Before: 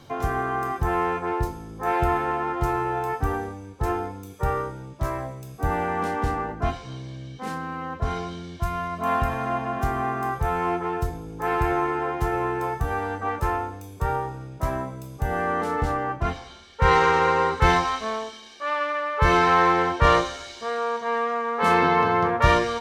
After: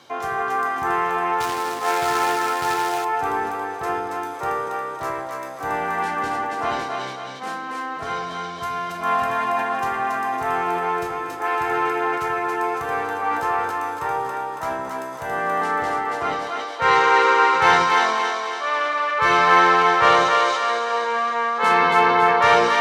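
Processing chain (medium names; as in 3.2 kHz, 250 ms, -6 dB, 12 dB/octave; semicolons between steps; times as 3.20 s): two-band feedback delay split 300 Hz, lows 80 ms, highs 278 ms, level -3 dB; 1.40–3.05 s: companded quantiser 4-bit; frequency weighting A; decay stretcher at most 38 dB/s; trim +2.5 dB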